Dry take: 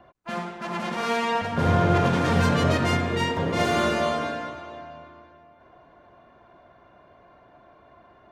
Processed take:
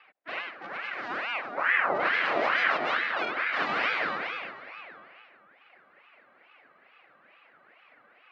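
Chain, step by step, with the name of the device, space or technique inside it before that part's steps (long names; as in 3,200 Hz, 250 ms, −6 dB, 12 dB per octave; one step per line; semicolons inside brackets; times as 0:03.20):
0:00.49–0:01.99: parametric band 2,400 Hz −6.5 dB → −14 dB 2 octaves
voice changer toy (ring modulator whose carrier an LFO sweeps 1,200 Hz, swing 60%, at 2.3 Hz; loudspeaker in its box 400–3,900 Hz, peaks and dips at 420 Hz −5 dB, 920 Hz −6 dB, 3,400 Hz −5 dB)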